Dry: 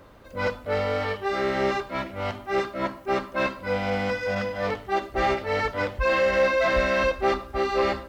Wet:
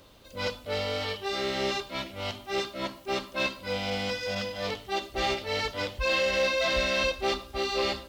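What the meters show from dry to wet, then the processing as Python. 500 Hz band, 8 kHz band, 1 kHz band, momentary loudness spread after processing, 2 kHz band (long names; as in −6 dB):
−6.0 dB, can't be measured, −7.0 dB, 9 LU, −3.5 dB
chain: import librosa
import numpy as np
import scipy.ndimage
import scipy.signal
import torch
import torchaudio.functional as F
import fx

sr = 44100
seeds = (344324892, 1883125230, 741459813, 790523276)

y = fx.high_shelf_res(x, sr, hz=2400.0, db=10.0, q=1.5)
y = y * 10.0 ** (-5.5 / 20.0)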